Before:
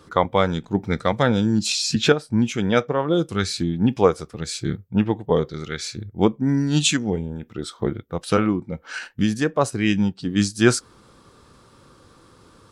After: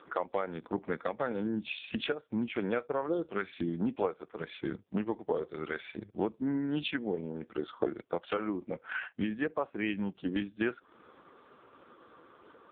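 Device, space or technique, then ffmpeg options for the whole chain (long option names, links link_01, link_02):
voicemail: -af "highpass=320,lowpass=2900,acompressor=threshold=-29dB:ratio=6,volume=1dB" -ar 8000 -c:a libopencore_amrnb -b:a 4750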